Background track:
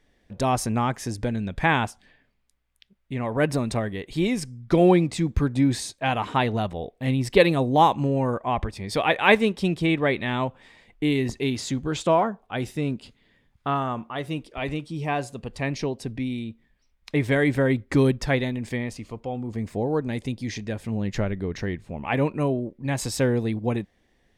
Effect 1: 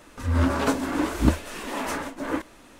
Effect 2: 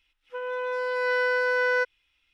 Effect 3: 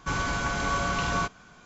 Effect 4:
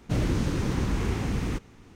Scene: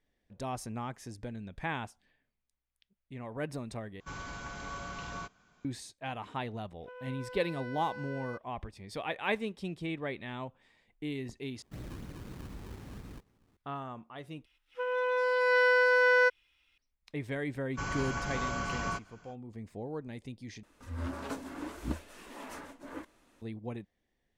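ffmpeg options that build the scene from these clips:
ffmpeg -i bed.wav -i cue0.wav -i cue1.wav -i cue2.wav -i cue3.wav -filter_complex "[3:a]asplit=2[link_01][link_02];[2:a]asplit=2[link_03][link_04];[0:a]volume=-14.5dB[link_05];[link_03]acompressor=threshold=-26dB:ratio=6:attack=3.2:release=140:knee=1:detection=peak[link_06];[4:a]acrusher=samples=22:mix=1:aa=0.000001:lfo=1:lforange=22:lforate=4[link_07];[link_02]bandreject=frequency=3700:width=5.3[link_08];[link_05]asplit=5[link_09][link_10][link_11][link_12][link_13];[link_09]atrim=end=4.004[link_14];[link_01]atrim=end=1.65,asetpts=PTS-STARTPTS,volume=-14dB[link_15];[link_10]atrim=start=5.646:end=11.624[link_16];[link_07]atrim=end=1.95,asetpts=PTS-STARTPTS,volume=-18dB[link_17];[link_11]atrim=start=13.566:end=14.454[link_18];[link_04]atrim=end=2.33[link_19];[link_12]atrim=start=16.776:end=20.634[link_20];[1:a]atrim=end=2.79,asetpts=PTS-STARTPTS,volume=-15.5dB[link_21];[link_13]atrim=start=23.416[link_22];[link_06]atrim=end=2.33,asetpts=PTS-STARTPTS,volume=-15dB,afade=type=in:duration=0.004:curve=hsin,afade=type=out:start_time=2.326:duration=0.004:curve=hsin,adelay=6530[link_23];[link_08]atrim=end=1.65,asetpts=PTS-STARTPTS,volume=-7.5dB,afade=type=in:duration=0.05,afade=type=out:start_time=1.6:duration=0.05,adelay=17710[link_24];[link_14][link_15]acrossfade=duration=0.004:curve1=hsin:curve2=hsin[link_25];[link_25][link_16]acrossfade=duration=0.004:curve1=hsin:curve2=hsin[link_26];[link_26][link_17]acrossfade=duration=0.004:curve1=hsin:curve2=hsin[link_27];[link_27][link_18]acrossfade=duration=0.004:curve1=hsin:curve2=hsin[link_28];[link_28][link_19]acrossfade=duration=0.004:curve1=hsin:curve2=hsin[link_29];[link_29][link_20]acrossfade=duration=0.004:curve1=hsin:curve2=hsin[link_30];[link_30][link_21]acrossfade=duration=0.004:curve1=hsin:curve2=hsin[link_31];[link_31][link_22]acrossfade=duration=0.004:curve1=hsin:curve2=hsin[link_32];[link_32][link_23][link_24]amix=inputs=3:normalize=0" out.wav

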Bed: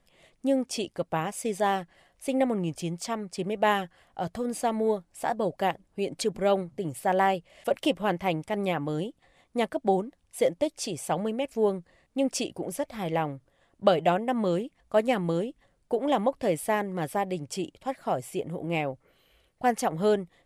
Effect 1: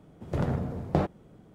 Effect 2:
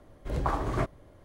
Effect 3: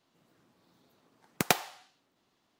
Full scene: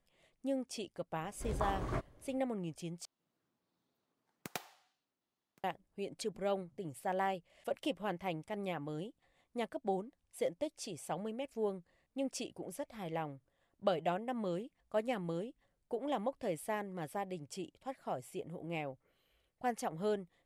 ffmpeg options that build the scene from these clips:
ffmpeg -i bed.wav -i cue0.wav -i cue1.wav -i cue2.wav -filter_complex "[0:a]volume=-11.5dB[link_01];[3:a]aecho=1:1:1121:0.075[link_02];[link_01]asplit=2[link_03][link_04];[link_03]atrim=end=3.054[link_05];[link_02]atrim=end=2.59,asetpts=PTS-STARTPTS,volume=-17dB[link_06];[link_04]atrim=start=5.636[link_07];[2:a]atrim=end=1.24,asetpts=PTS-STARTPTS,volume=-8.5dB,afade=type=in:duration=0.004:curve=hsin,afade=type=out:start_time=1.236:duration=0.004:curve=hsin,adelay=1150[link_08];[link_05][link_06]acrossfade=duration=0.004:curve1=hsin:curve2=hsin[link_09];[link_09][link_07]acrossfade=duration=0.004:curve1=hsin:curve2=hsin[link_10];[link_10][link_08]amix=inputs=2:normalize=0" out.wav

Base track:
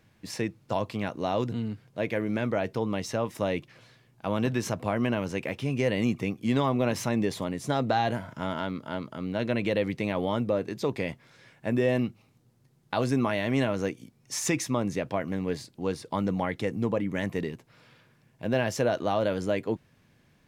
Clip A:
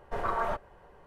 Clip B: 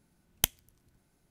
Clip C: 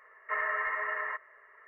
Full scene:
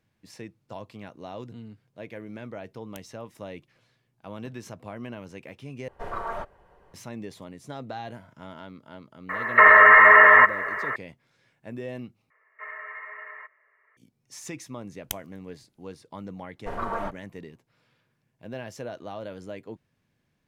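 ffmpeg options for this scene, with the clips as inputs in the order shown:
ffmpeg -i bed.wav -i cue0.wav -i cue1.wav -i cue2.wav -filter_complex "[2:a]asplit=2[link_01][link_02];[1:a]asplit=2[link_03][link_04];[3:a]asplit=2[link_05][link_06];[0:a]volume=-11dB[link_07];[link_01]alimiter=limit=-12dB:level=0:latency=1:release=71[link_08];[link_05]alimiter=level_in=30.5dB:limit=-1dB:release=50:level=0:latency=1[link_09];[link_06]equalizer=frequency=2300:width_type=o:width=0.36:gain=8.5[link_10];[link_04]agate=range=-33dB:threshold=-42dB:ratio=3:release=159:detection=peak[link_11];[link_07]asplit=3[link_12][link_13][link_14];[link_12]atrim=end=5.884[link_15];[link_03]atrim=end=1.06,asetpts=PTS-STARTPTS,volume=-2.5dB[link_16];[link_13]atrim=start=6.936:end=12.304[link_17];[link_10]atrim=end=1.67,asetpts=PTS-STARTPTS,volume=-9.5dB[link_18];[link_14]atrim=start=13.966[link_19];[link_08]atrim=end=1.3,asetpts=PTS-STARTPTS,volume=-15.5dB,afade=type=in:duration=0.004:curve=hsin,afade=type=out:start_time=1.296:duration=0.004:curve=hsin,adelay=2520[link_20];[link_09]atrim=end=1.67,asetpts=PTS-STARTPTS,volume=-3dB,afade=type=in:duration=0.004:curve=hsin,afade=type=out:start_time=1.666:duration=0.004:curve=hsin,adelay=9290[link_21];[link_02]atrim=end=1.3,asetpts=PTS-STARTPTS,volume=-7dB,afade=type=in:duration=0.004:curve=hsin,afade=type=out:start_time=1.296:duration=0.004:curve=hsin,adelay=14670[link_22];[link_11]atrim=end=1.06,asetpts=PTS-STARTPTS,volume=-1dB,afade=type=in:duration=0.004:curve=hsin,afade=type=out:start_time=1.056:duration=0.004:curve=hsin,adelay=16540[link_23];[link_15][link_16]acrossfade=duration=0.004:curve1=hsin:curve2=hsin[link_24];[link_24][link_17]acrossfade=duration=0.004:curve1=hsin:curve2=hsin[link_25];[link_25][link_18]acrossfade=duration=0.004:curve1=hsin:curve2=hsin[link_26];[link_26][link_19]acrossfade=duration=0.004:curve1=hsin:curve2=hsin[link_27];[link_27][link_20][link_21][link_22][link_23]amix=inputs=5:normalize=0" out.wav

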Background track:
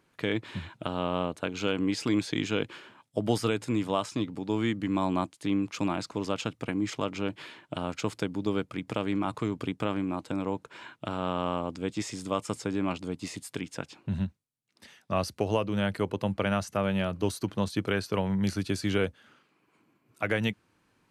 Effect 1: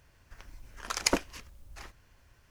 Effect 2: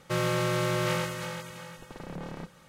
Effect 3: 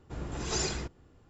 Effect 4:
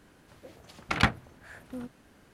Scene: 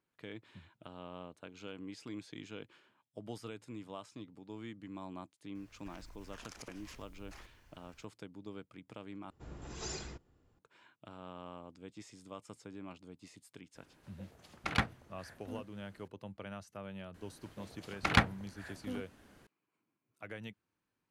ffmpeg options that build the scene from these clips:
ffmpeg -i bed.wav -i cue0.wav -i cue1.wav -i cue2.wav -i cue3.wav -filter_complex "[4:a]asplit=2[link_01][link_02];[0:a]volume=-18dB[link_03];[1:a]acompressor=threshold=-45dB:ratio=10:attack=3.2:release=87:knee=1:detection=peak[link_04];[link_03]asplit=2[link_05][link_06];[link_05]atrim=end=9.304[link_07];[3:a]atrim=end=1.29,asetpts=PTS-STARTPTS,volume=-10.5dB[link_08];[link_06]atrim=start=10.586[link_09];[link_04]atrim=end=2.5,asetpts=PTS-STARTPTS,volume=-3dB,afade=type=in:duration=0.004:curve=hsin,afade=type=out:start_time=2.496:duration=0.004:curve=hsin,adelay=5550[link_10];[link_01]atrim=end=2.33,asetpts=PTS-STARTPTS,volume=-7.5dB,afade=type=in:duration=0.004:curve=hsin,afade=type=out:start_time=2.326:duration=0.004:curve=hsin,adelay=13750[link_11];[link_02]atrim=end=2.33,asetpts=PTS-STARTPTS,volume=-2.5dB,afade=type=in:duration=0.004:curve=hsin,afade=type=out:start_time=2.326:duration=0.004:curve=hsin,adelay=17140[link_12];[link_07][link_08]acrossfade=duration=0.004:curve1=hsin:curve2=hsin[link_13];[link_13][link_09]acrossfade=duration=0.004:curve1=hsin:curve2=hsin[link_14];[link_14][link_10][link_11][link_12]amix=inputs=4:normalize=0" out.wav

